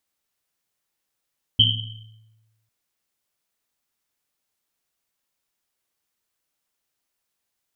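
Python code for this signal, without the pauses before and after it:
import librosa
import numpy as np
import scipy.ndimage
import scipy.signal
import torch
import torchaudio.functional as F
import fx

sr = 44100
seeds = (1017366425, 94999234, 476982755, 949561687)

y = fx.risset_drum(sr, seeds[0], length_s=1.1, hz=110.0, decay_s=1.25, noise_hz=3100.0, noise_width_hz=220.0, noise_pct=65)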